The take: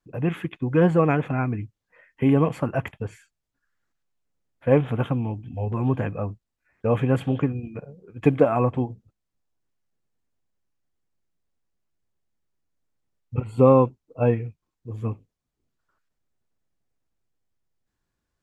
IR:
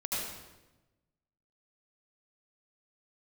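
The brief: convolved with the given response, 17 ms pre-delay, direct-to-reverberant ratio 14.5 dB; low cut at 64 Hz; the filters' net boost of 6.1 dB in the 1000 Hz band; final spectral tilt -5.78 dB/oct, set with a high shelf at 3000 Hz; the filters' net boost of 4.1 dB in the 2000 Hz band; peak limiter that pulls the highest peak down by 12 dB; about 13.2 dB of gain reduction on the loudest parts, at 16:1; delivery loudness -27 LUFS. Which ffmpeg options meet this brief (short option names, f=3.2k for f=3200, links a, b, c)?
-filter_complex "[0:a]highpass=64,equalizer=f=1k:t=o:g=7,equalizer=f=2k:t=o:g=4,highshelf=f=3k:g=-3.5,acompressor=threshold=-21dB:ratio=16,alimiter=limit=-22.5dB:level=0:latency=1,asplit=2[a][b];[1:a]atrim=start_sample=2205,adelay=17[c];[b][c]afir=irnorm=-1:irlink=0,volume=-20dB[d];[a][d]amix=inputs=2:normalize=0,volume=7dB"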